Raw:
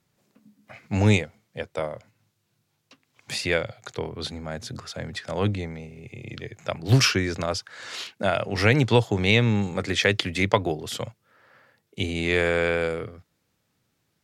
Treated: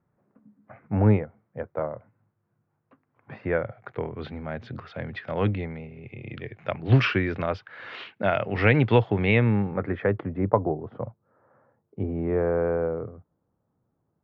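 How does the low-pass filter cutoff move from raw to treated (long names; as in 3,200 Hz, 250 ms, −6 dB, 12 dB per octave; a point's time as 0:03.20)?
low-pass filter 24 dB per octave
0:03.45 1,500 Hz
0:04.44 2,800 Hz
0:09.12 2,800 Hz
0:10.35 1,100 Hz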